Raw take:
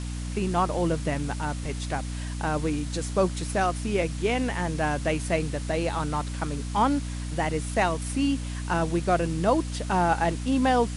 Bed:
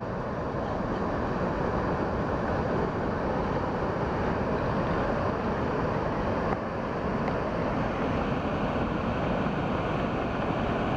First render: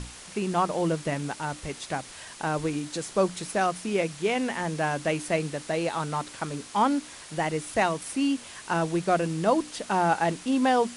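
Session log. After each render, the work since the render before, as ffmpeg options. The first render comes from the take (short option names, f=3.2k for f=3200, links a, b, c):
-af "bandreject=f=60:t=h:w=6,bandreject=f=120:t=h:w=6,bandreject=f=180:t=h:w=6,bandreject=f=240:t=h:w=6,bandreject=f=300:t=h:w=6"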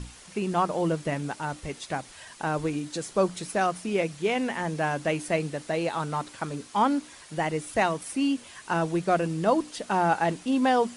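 -af "afftdn=nr=6:nf=-45"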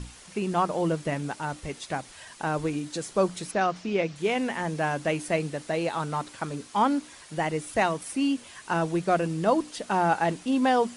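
-filter_complex "[0:a]asettb=1/sr,asplit=3[a][b][c];[a]atrim=end=3.514[d];[b]atrim=start=3.51:end=4.16,asetpts=PTS-STARTPTS,afade=t=in:d=0.004:c=qsin,afade=t=out:st=0.646:d=0.004:c=qsin,lowpass=f=6k:w=0.5412,lowpass=f=6k:w=1.3066[e];[c]atrim=start=4.156[f];[d][e]acrossfade=d=0.004:c1=hsin:c2=qsin[g];[g][f]acrossfade=d=0.004:c1=qsin:c2=hsin"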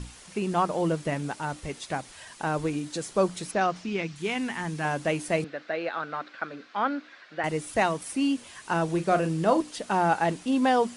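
-filter_complex "[0:a]asettb=1/sr,asplit=3[a][b][c];[a]atrim=end=3.844[d];[b]atrim=start=3.84:end=4.85,asetpts=PTS-STARTPTS,afade=t=in:d=0.004:c=qsin,afade=t=out:st=1.006:d=0.004:c=qsin,equalizer=f=560:t=o:w=0.78:g=-12[e];[c]atrim=start=4.846[f];[d][e]acrossfade=d=0.004:c1=hsin:c2=qsin[g];[g][f]acrossfade=d=0.004:c1=qsin:c2=hsin,asettb=1/sr,asplit=3[h][i][j];[h]atrim=end=5.444[k];[i]atrim=start=5.44:end=7.44,asetpts=PTS-STARTPTS,afade=t=in:d=0.004:c=qsin,afade=t=out:st=1.996:d=0.004:c=qsin,highpass=360,equalizer=f=410:t=q:w=4:g=-5,equalizer=f=920:t=q:w=4:g=-9,equalizer=f=1.5k:t=q:w=4:g=7,equalizer=f=3.1k:t=q:w=4:g=-5,lowpass=f=3.9k:w=0.5412,lowpass=f=3.9k:w=1.3066[l];[j]atrim=start=7.436[m];[k][l]acrossfade=d=0.004:c1=hsin:c2=qsin[n];[n][m]acrossfade=d=0.004:c1=qsin:c2=hsin,asettb=1/sr,asplit=3[o][p][q];[o]atrim=end=8.854[r];[p]atrim=start=8.85:end=9.62,asetpts=PTS-STARTPTS,afade=t=in:d=0.004:c=qsin,afade=t=out:st=0.766:d=0.004:c=qsin,asplit=2[s][t];[t]adelay=37,volume=-10dB[u];[s][u]amix=inputs=2:normalize=0,atrim=end_sample=33957[v];[q]atrim=start=9.616[w];[r][v]acrossfade=d=0.004:c1=hsin:c2=qsin[x];[x][w]acrossfade=d=0.004:c1=qsin:c2=hsin"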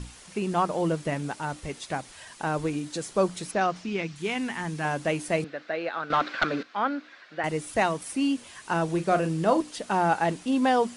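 -filter_complex "[0:a]asettb=1/sr,asplit=3[a][b][c];[a]atrim=end=6.104[d];[b]atrim=start=6.1:end=6.63,asetpts=PTS-STARTPTS,afade=t=in:d=0.004:c=qsin,afade=t=out:st=0.526:d=0.004:c=qsin,aeval=exprs='0.178*sin(PI/2*2.51*val(0)/0.178)':c=same[e];[c]atrim=start=6.626[f];[d][e]acrossfade=d=0.004:c1=hsin:c2=qsin[g];[g][f]acrossfade=d=0.004:c1=qsin:c2=hsin"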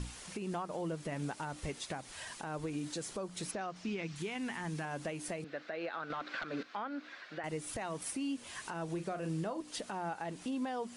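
-af "acompressor=threshold=-31dB:ratio=6,alimiter=level_in=5.5dB:limit=-24dB:level=0:latency=1:release=237,volume=-5.5dB"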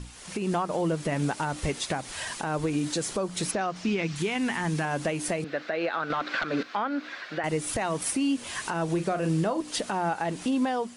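-af "dynaudnorm=f=120:g=5:m=11dB"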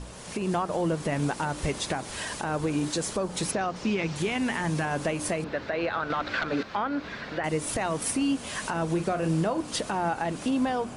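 -filter_complex "[1:a]volume=-14.5dB[a];[0:a][a]amix=inputs=2:normalize=0"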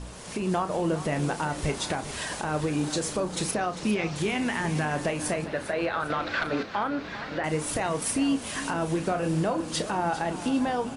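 -filter_complex "[0:a]asplit=2[a][b];[b]adelay=33,volume=-10.5dB[c];[a][c]amix=inputs=2:normalize=0,aecho=1:1:400|800|1200|1600:0.211|0.0845|0.0338|0.0135"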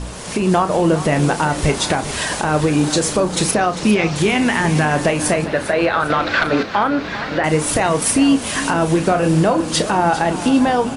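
-af "volume=11.5dB"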